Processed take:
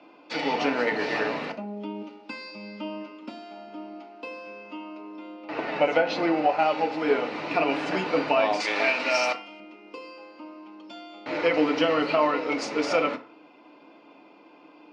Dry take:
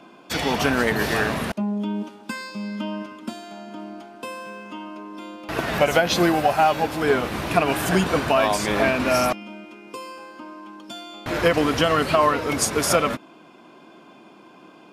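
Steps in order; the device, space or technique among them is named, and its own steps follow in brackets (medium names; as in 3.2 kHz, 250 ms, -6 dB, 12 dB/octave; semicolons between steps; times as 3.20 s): 5.16–6.59 s: treble shelf 4 kHz -8.5 dB; high-pass 87 Hz; 8.60–9.60 s: tilt EQ +3.5 dB/octave; phone earpiece (cabinet simulation 380–4200 Hz, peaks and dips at 390 Hz -4 dB, 680 Hz -5 dB, 1.1 kHz -7 dB, 1.6 kHz -10 dB, 3.4 kHz -10 dB); FDN reverb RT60 0.42 s, low-frequency decay 0.95×, high-frequency decay 0.6×, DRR 5 dB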